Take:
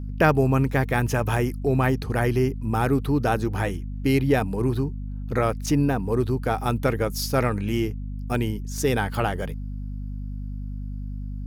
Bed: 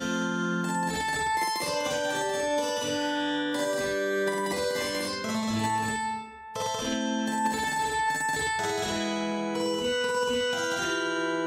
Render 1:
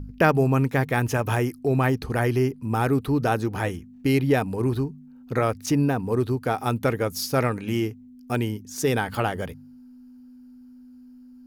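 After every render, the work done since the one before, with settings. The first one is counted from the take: de-hum 50 Hz, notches 4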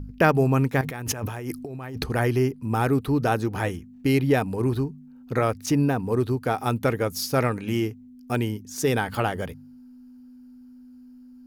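0.81–2.04 s: compressor with a negative ratio -32 dBFS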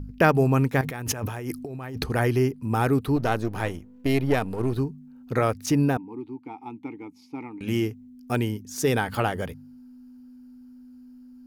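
3.16–4.78 s: partial rectifier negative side -7 dB; 5.97–7.61 s: vowel filter u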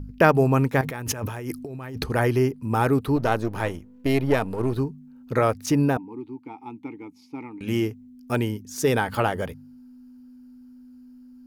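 band-stop 740 Hz, Q 12; dynamic bell 760 Hz, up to +4 dB, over -35 dBFS, Q 0.8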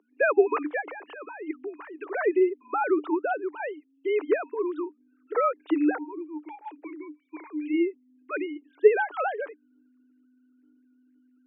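formants replaced by sine waves; rippled Chebyshev high-pass 290 Hz, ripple 6 dB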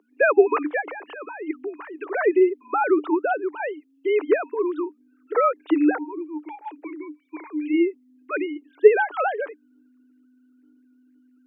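trim +4.5 dB

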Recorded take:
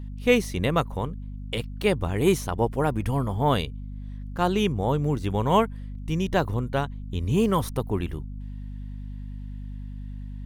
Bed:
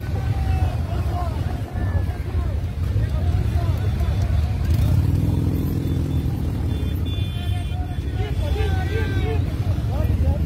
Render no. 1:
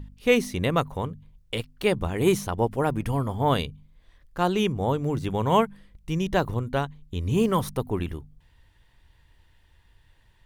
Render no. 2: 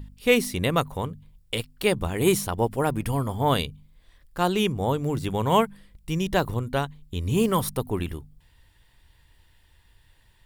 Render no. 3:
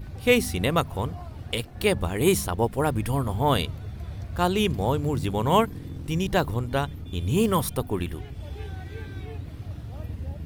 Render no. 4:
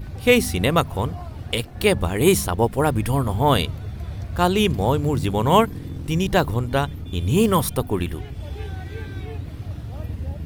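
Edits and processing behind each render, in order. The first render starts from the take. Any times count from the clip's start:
de-hum 50 Hz, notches 5
treble shelf 4.5 kHz +9 dB; band-stop 6.2 kHz, Q 8.9
add bed -14.5 dB
trim +4.5 dB; peak limiter -1 dBFS, peak gain reduction 1 dB

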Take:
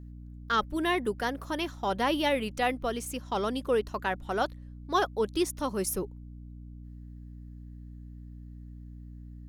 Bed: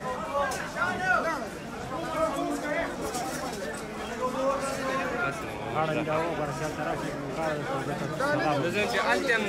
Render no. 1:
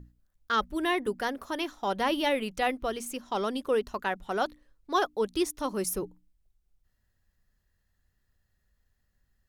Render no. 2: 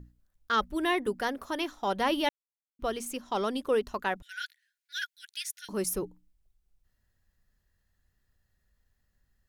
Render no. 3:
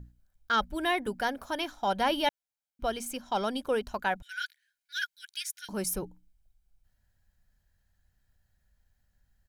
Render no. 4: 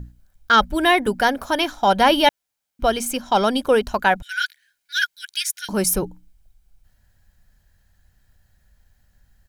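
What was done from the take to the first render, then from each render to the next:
hum notches 60/120/180/240/300 Hz
2.29–2.79 s: mute; 4.22–5.69 s: brick-wall FIR high-pass 1.4 kHz
comb 1.3 ms, depth 42%
trim +12 dB

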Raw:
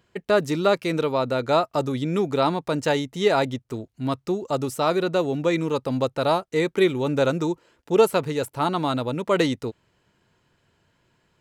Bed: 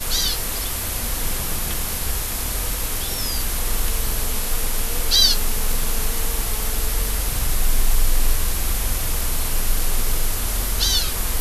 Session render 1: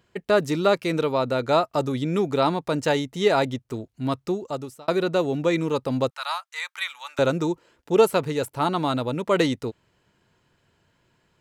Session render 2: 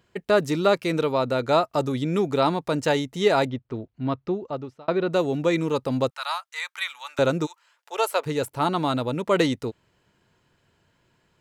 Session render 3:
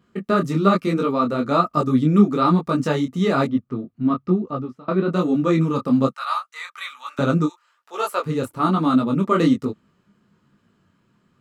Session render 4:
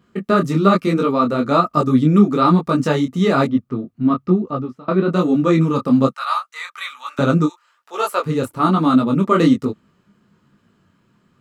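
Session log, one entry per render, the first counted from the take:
4.27–4.88 s: fade out; 6.10–7.19 s: inverse Chebyshev high-pass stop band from 390 Hz, stop band 50 dB
3.47–5.10 s: distance through air 250 m; 7.45–8.25 s: high-pass 1.2 kHz -> 450 Hz 24 dB/octave
small resonant body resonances 210/1200 Hz, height 16 dB, ringing for 30 ms; detune thickener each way 39 cents
trim +3.5 dB; peak limiter -3 dBFS, peak gain reduction 2 dB

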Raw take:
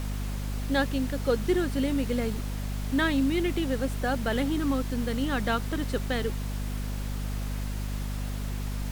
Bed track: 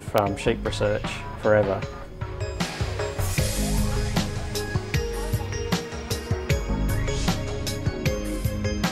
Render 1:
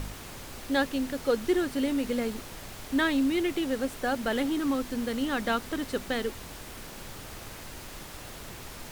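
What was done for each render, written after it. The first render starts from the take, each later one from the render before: de-hum 50 Hz, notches 5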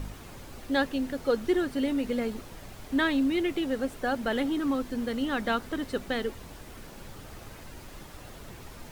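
noise reduction 7 dB, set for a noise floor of -44 dBFS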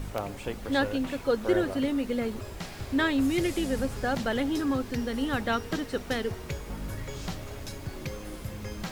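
add bed track -12 dB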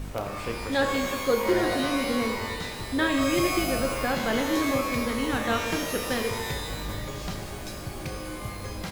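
doubling 32 ms -11.5 dB; pitch-shifted reverb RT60 1.4 s, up +12 st, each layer -2 dB, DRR 5 dB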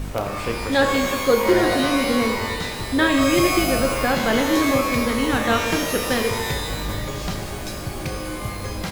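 trim +6.5 dB

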